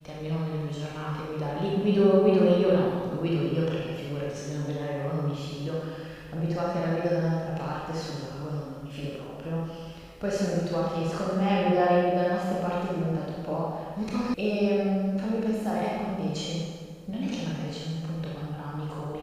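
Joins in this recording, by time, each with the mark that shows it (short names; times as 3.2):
14.34 sound cut off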